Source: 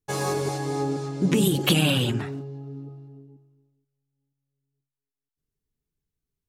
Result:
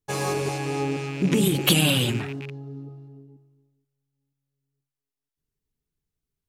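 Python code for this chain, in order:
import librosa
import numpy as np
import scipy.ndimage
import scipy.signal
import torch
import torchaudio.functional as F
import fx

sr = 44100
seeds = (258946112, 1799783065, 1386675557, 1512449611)

y = fx.rattle_buzz(x, sr, strikes_db=-34.0, level_db=-27.0)
y = fx.high_shelf(y, sr, hz=4900.0, db=7.5, at=(1.67, 2.2))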